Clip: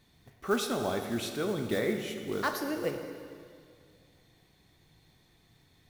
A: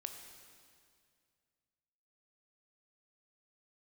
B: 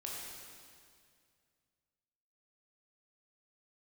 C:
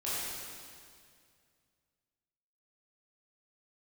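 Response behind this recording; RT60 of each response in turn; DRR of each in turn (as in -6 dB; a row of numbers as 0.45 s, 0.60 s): A; 2.2 s, 2.2 s, 2.2 s; 5.0 dB, -4.0 dB, -10.5 dB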